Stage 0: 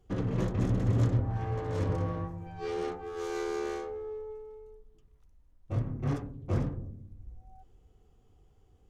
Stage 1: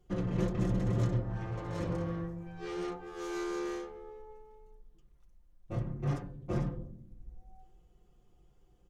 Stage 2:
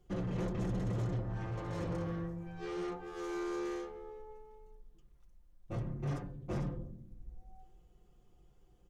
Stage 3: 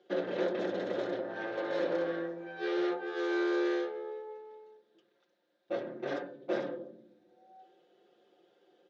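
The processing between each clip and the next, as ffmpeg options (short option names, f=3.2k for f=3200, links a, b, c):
-af "aecho=1:1:5.7:0.7,bandreject=f=253.5:t=h:w=4,bandreject=f=507:t=h:w=4,bandreject=f=760.5:t=h:w=4,bandreject=f=1.014k:t=h:w=4,bandreject=f=1.2675k:t=h:w=4,bandreject=f=1.521k:t=h:w=4,bandreject=f=1.7745k:t=h:w=4,bandreject=f=2.028k:t=h:w=4,bandreject=f=2.2815k:t=h:w=4,bandreject=f=2.535k:t=h:w=4,bandreject=f=2.7885k:t=h:w=4,bandreject=f=3.042k:t=h:w=4,bandreject=f=3.2955k:t=h:w=4,bandreject=f=3.549k:t=h:w=4,bandreject=f=3.8025k:t=h:w=4,bandreject=f=4.056k:t=h:w=4,bandreject=f=4.3095k:t=h:w=4,bandreject=f=4.563k:t=h:w=4,bandreject=f=4.8165k:t=h:w=4,bandreject=f=5.07k:t=h:w=4,volume=-3dB"
-filter_complex "[0:a]acrossover=split=2200[a][b];[a]asoftclip=type=tanh:threshold=-31dB[c];[b]alimiter=level_in=24.5dB:limit=-24dB:level=0:latency=1:release=115,volume=-24.5dB[d];[c][d]amix=inputs=2:normalize=0"
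-af "highpass=f=280:w=0.5412,highpass=f=280:w=1.3066,equalizer=f=370:t=q:w=4:g=3,equalizer=f=570:t=q:w=4:g=10,equalizer=f=1.1k:t=q:w=4:g=-6,equalizer=f=1.6k:t=q:w=4:g=9,equalizer=f=3.7k:t=q:w=4:g=9,lowpass=f=5k:w=0.5412,lowpass=f=5k:w=1.3066,volume=5dB"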